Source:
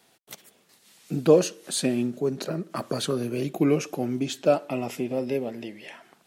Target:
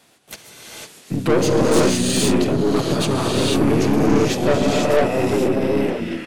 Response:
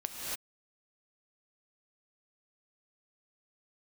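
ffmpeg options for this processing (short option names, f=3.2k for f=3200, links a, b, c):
-filter_complex "[1:a]atrim=start_sample=2205,asetrate=25578,aresample=44100[a];[0:a][a]afir=irnorm=-1:irlink=0,aeval=exprs='(tanh(8.91*val(0)+0.4)-tanh(0.4))/8.91':c=same,asplit=2[b][c];[c]asetrate=33038,aresample=44100,atempo=1.33484,volume=-3dB[d];[b][d]amix=inputs=2:normalize=0,volume=4.5dB"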